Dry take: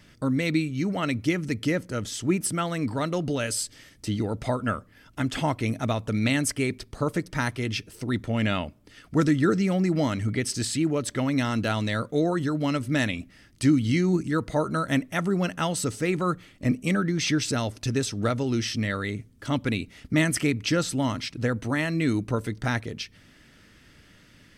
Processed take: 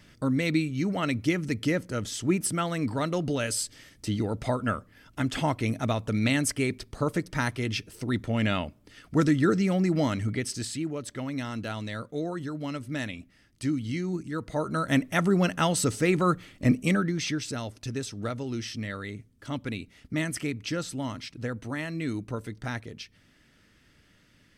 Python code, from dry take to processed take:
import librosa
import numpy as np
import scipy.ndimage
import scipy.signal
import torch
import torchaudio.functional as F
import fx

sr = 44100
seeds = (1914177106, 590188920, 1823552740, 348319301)

y = fx.gain(x, sr, db=fx.line((10.14, -1.0), (10.93, -8.0), (14.3, -8.0), (15.07, 2.0), (16.8, 2.0), (17.41, -7.0)))